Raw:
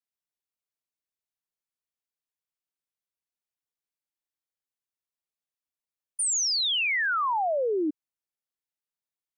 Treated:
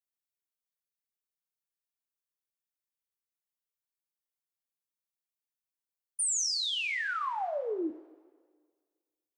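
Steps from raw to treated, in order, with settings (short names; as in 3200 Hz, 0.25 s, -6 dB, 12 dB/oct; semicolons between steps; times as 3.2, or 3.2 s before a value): high shelf 8300 Hz +9 dB; two-slope reverb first 0.29 s, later 1.7 s, from -18 dB, DRR 5.5 dB; gain -8.5 dB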